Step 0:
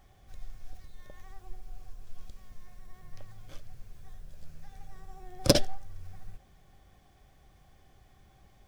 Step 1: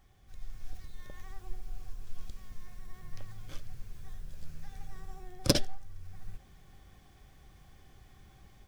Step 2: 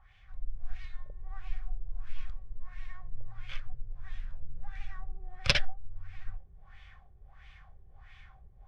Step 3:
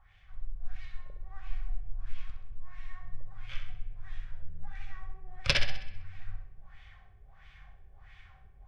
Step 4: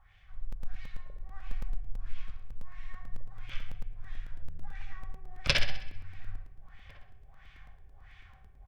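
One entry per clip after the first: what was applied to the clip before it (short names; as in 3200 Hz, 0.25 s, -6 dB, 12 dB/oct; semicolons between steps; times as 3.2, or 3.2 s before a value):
bell 640 Hz -6 dB 0.74 oct; AGC gain up to 7 dB; gain -3.5 dB
passive tone stack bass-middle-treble 10-0-10; LFO low-pass sine 1.5 Hz 370–2600 Hz; gain +10 dB
flutter echo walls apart 11 m, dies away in 0.58 s; on a send at -9.5 dB: reverb RT60 0.95 s, pre-delay 3 ms; on the sum: gain -1.5 dB
outdoor echo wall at 240 m, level -26 dB; crackling interface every 0.11 s, samples 128, repeat, from 0.52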